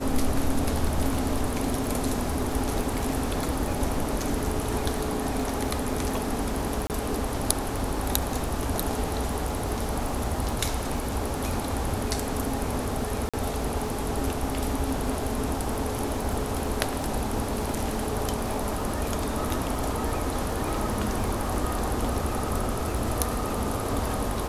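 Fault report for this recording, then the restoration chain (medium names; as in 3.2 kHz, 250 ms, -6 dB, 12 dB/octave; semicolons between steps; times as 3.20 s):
crackle 50 per s -34 dBFS
6.87–6.90 s: dropout 28 ms
13.29–13.34 s: dropout 46 ms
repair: de-click; interpolate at 6.87 s, 28 ms; interpolate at 13.29 s, 46 ms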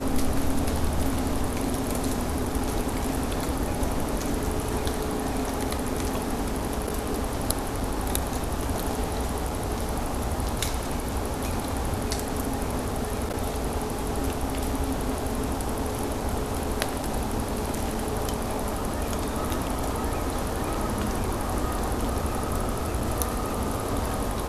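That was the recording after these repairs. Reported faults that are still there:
nothing left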